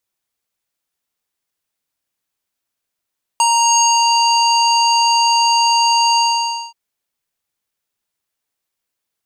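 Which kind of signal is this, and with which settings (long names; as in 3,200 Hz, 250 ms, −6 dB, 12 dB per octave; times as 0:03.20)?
subtractive voice square A#5 12 dB per octave, low-pass 5,600 Hz, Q 6.5, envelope 0.5 octaves, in 0.70 s, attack 1.5 ms, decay 0.06 s, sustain −2 dB, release 0.55 s, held 2.78 s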